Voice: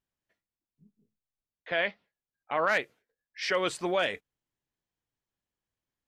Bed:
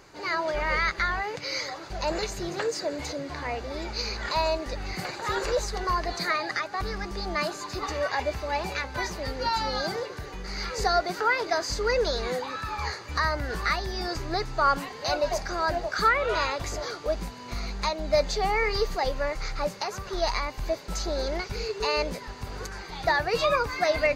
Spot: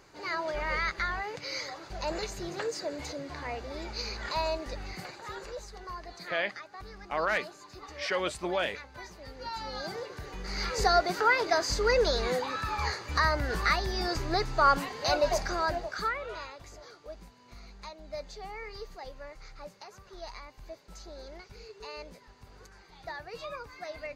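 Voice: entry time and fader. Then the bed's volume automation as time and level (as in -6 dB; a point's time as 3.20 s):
4.60 s, -2.5 dB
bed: 4.77 s -5 dB
5.49 s -14.5 dB
9.18 s -14.5 dB
10.64 s 0 dB
15.47 s 0 dB
16.53 s -16.5 dB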